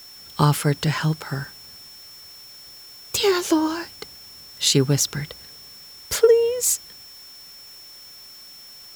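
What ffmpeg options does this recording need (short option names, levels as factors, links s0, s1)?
-af "bandreject=f=5400:w=30,afwtdn=0.0035"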